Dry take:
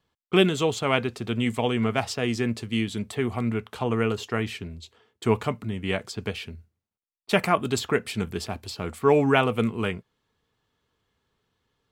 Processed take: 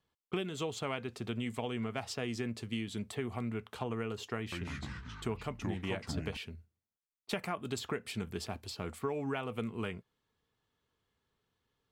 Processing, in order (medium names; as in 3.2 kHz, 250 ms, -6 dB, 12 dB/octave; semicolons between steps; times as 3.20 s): compression 10:1, threshold -25 dBFS, peak gain reduction 12.5 dB; 4.37–6.37 s: ever faster or slower copies 150 ms, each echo -4 st, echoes 3; trim -7 dB